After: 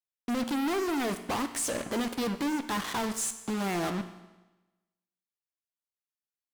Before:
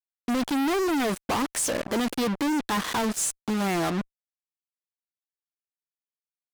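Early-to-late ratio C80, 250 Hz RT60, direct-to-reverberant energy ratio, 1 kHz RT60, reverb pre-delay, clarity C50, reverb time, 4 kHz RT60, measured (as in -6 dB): 13.0 dB, 1.1 s, 9.0 dB, 1.1 s, 17 ms, 11.5 dB, 1.1 s, 1.1 s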